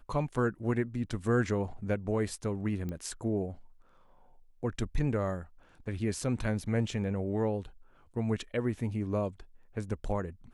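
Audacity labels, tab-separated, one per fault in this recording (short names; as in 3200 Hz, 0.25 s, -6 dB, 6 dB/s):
2.890000	2.890000	pop -26 dBFS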